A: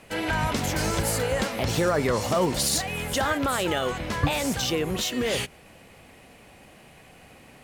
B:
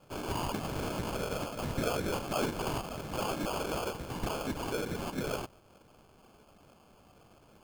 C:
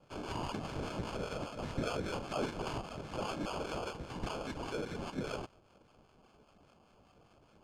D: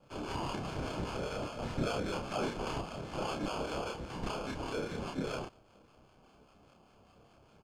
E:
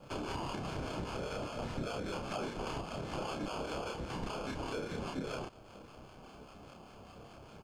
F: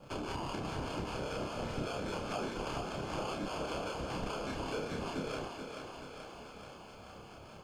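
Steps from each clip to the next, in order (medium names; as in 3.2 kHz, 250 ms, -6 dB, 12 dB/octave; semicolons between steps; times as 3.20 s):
whisper effect; sample-and-hold 23×; trim -9 dB
low-pass 6.5 kHz 12 dB/octave; harmonic tremolo 5 Hz, depth 50%, crossover 870 Hz; trim -2 dB
doubling 30 ms -2.5 dB
compression 4:1, threshold -47 dBFS, peak gain reduction 15.5 dB; trim +9 dB
thinning echo 432 ms, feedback 70%, high-pass 240 Hz, level -6 dB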